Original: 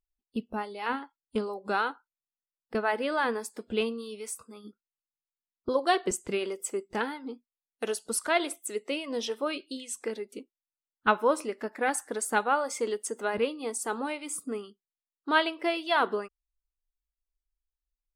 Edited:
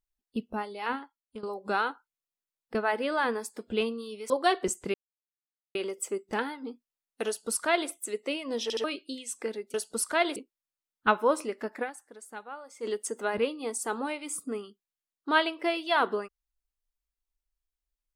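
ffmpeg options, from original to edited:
-filter_complex "[0:a]asplit=11[a][b][c][d][e][f][g][h][i][j][k];[a]atrim=end=1.43,asetpts=PTS-STARTPTS,afade=t=out:st=0.84:d=0.59:silence=0.158489[l];[b]atrim=start=1.43:end=4.302,asetpts=PTS-STARTPTS,afade=t=in:d=0.004:c=hsin:silence=0.158489[m];[c]atrim=start=5.728:end=6.37,asetpts=PTS-STARTPTS,afade=t=out:st=0.638:d=0.004:c=hsin,apad=pad_dur=0.81[n];[d]atrim=start=6.37:end=9.322,asetpts=PTS-STARTPTS,afade=t=in:d=0.004:c=hsin[o];[e]atrim=start=9.248:end=9.322[p];[f]atrim=start=9.248:end=9.322[q];[g]atrim=start=9.458:end=10.362[r];[h]atrim=start=7.888:end=8.512[s];[i]atrim=start=10.358:end=12.12,asetpts=PTS-STARTPTS,afade=t=out:st=1.462:d=0.3:c=exp:silence=0.158489[t];[j]atrim=start=12.12:end=12.56,asetpts=PTS-STARTPTS,volume=-16dB[u];[k]atrim=start=12.56,asetpts=PTS-STARTPTS,afade=t=in:d=0.3:c=exp:silence=0.158489[v];[l][m]concat=n=2:v=0:a=1[w];[n][o]concat=n=2:v=0:a=1[x];[w][x]acrossfade=d=0.004:c1=hsin:c2=hsin[y];[y][p]acrossfade=d=0.004:c1=hsin:c2=hsin[z];[z][q]acrossfade=d=0.004:c1=hsin:c2=hsin[aa];[aa][r]acrossfade=d=0.004:c1=hsin:c2=hsin[ab];[ab][s]acrossfade=d=0.004:c1=hsin:c2=hsin[ac];[t][u][v]concat=n=3:v=0:a=1[ad];[ac][ad]acrossfade=d=0.004:c1=hsin:c2=hsin"

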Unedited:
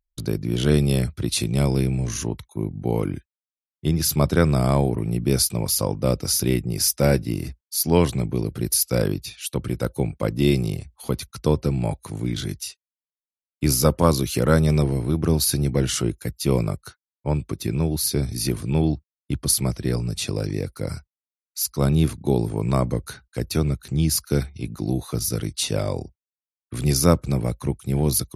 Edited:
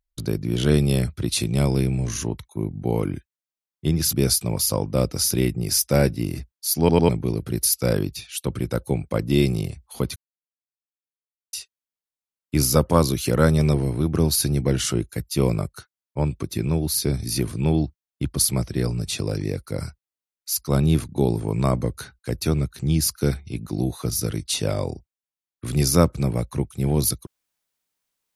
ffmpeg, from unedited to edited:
-filter_complex "[0:a]asplit=7[a][b][c][d][e][f][g];[a]atrim=end=4.132[h];[b]atrim=start=5.218:end=7.982[i];[c]atrim=start=7.878:end=7.982[j];[d]atrim=start=7.878:end=7.982[k];[e]atrim=start=8.178:end=11.25,asetpts=PTS-STARTPTS,afade=t=out:st=3.068:d=0.004:c=hsin[l];[f]atrim=start=11.25:end=12.62,asetpts=PTS-STARTPTS,volume=0[m];[g]atrim=start=12.62,asetpts=PTS-STARTPTS,afade=t=in:d=0.004:c=hsin[n];[h][i]acrossfade=d=0.004:c1=hsin:c2=hsin[o];[o][j]acrossfade=d=0.004:c1=hsin:c2=hsin[p];[p][k]acrossfade=d=0.004:c1=hsin:c2=hsin[q];[l][m][n]concat=n=3:v=0:a=1[r];[q][r]acrossfade=d=0.004:c1=hsin:c2=hsin"

